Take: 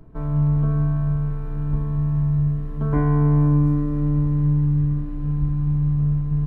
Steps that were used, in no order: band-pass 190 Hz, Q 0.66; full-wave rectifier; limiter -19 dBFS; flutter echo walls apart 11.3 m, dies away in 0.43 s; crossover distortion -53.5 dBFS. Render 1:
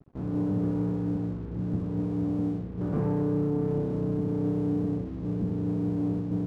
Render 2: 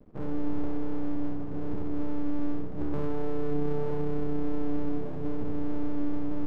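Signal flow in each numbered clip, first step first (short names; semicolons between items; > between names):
full-wave rectifier > band-pass > crossover distortion > limiter > flutter echo; limiter > band-pass > full-wave rectifier > flutter echo > crossover distortion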